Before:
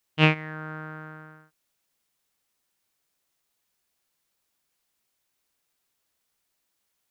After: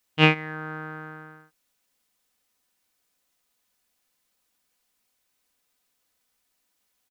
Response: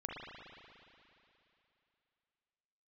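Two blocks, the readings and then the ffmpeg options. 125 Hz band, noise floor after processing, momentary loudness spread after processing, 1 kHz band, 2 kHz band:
−0.5 dB, −75 dBFS, 19 LU, +3.0 dB, +2.5 dB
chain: -af "aecho=1:1:4:0.4,volume=2dB"

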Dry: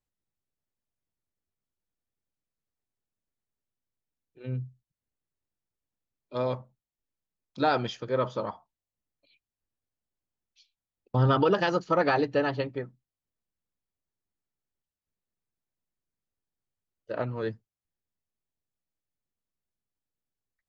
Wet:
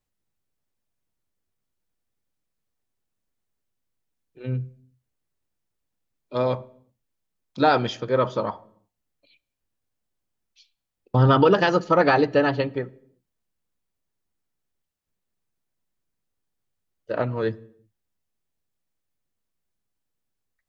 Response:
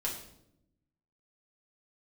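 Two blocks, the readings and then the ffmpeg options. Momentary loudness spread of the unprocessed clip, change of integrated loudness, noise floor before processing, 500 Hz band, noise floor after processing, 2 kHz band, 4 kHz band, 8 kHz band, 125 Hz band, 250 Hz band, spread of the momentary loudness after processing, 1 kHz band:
15 LU, +6.0 dB, below −85 dBFS, +6.5 dB, −81 dBFS, +6.5 dB, +5.5 dB, can't be measured, +5.5 dB, +6.5 dB, 15 LU, +6.0 dB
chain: -filter_complex "[0:a]asplit=2[link_01][link_02];[1:a]atrim=start_sample=2205,afade=type=out:start_time=0.42:duration=0.01,atrim=end_sample=18963,lowpass=3500[link_03];[link_02][link_03]afir=irnorm=-1:irlink=0,volume=-18.5dB[link_04];[link_01][link_04]amix=inputs=2:normalize=0,volume=5.5dB"

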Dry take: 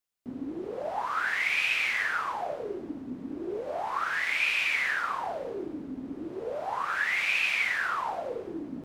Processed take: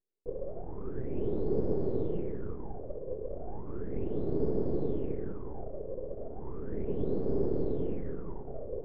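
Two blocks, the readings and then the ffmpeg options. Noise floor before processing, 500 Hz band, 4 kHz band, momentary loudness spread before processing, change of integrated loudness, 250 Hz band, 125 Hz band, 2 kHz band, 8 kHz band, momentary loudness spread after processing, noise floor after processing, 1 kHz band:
−42 dBFS, +3.0 dB, below −30 dB, 14 LU, −7.0 dB, +2.5 dB, +14.5 dB, below −35 dB, below −35 dB, 11 LU, −41 dBFS, −18.0 dB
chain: -af "aeval=exprs='abs(val(0))':channel_layout=same,lowpass=frequency=420:width_type=q:width=4.9"

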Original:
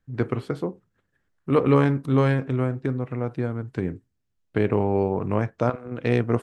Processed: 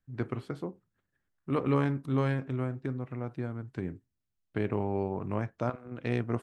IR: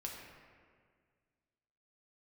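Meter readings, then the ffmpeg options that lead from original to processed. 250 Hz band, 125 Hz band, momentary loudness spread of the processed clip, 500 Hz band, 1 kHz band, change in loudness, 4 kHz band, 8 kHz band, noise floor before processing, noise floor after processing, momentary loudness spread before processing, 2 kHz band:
−8.0 dB, −8.0 dB, 11 LU, −10.0 dB, −8.0 dB, −8.5 dB, −8.0 dB, can't be measured, −75 dBFS, −83 dBFS, 11 LU, −8.0 dB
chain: -af "equalizer=frequency=470:width=5.6:gain=-5,volume=-8dB"

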